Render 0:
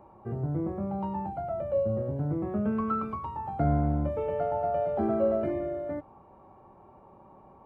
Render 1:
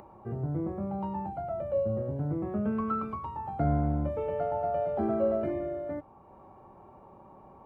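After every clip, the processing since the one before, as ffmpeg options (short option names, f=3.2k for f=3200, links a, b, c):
-af "acompressor=mode=upward:threshold=-45dB:ratio=2.5,volume=-1.5dB"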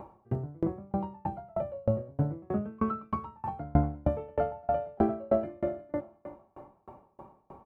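-af "aecho=1:1:351|702|1053|1404:0.2|0.0778|0.0303|0.0118,aeval=exprs='val(0)*pow(10,-33*if(lt(mod(3.2*n/s,1),2*abs(3.2)/1000),1-mod(3.2*n/s,1)/(2*abs(3.2)/1000),(mod(3.2*n/s,1)-2*abs(3.2)/1000)/(1-2*abs(3.2)/1000))/20)':c=same,volume=8dB"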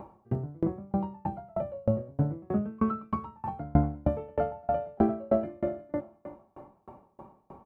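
-af "equalizer=f=210:w=1.5:g=3.5"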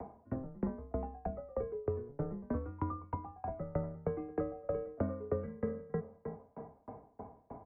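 -filter_complex "[0:a]highpass=f=210:t=q:w=0.5412,highpass=f=210:t=q:w=1.307,lowpass=f=2.2k:t=q:w=0.5176,lowpass=f=2.2k:t=q:w=0.7071,lowpass=f=2.2k:t=q:w=1.932,afreqshift=-130,acrossover=split=210|460|1200[a][b][c][d];[a]acompressor=threshold=-41dB:ratio=4[e];[b]acompressor=threshold=-40dB:ratio=4[f];[c]acompressor=threshold=-46dB:ratio=4[g];[d]acompressor=threshold=-54dB:ratio=4[h];[e][f][g][h]amix=inputs=4:normalize=0,volume=1.5dB"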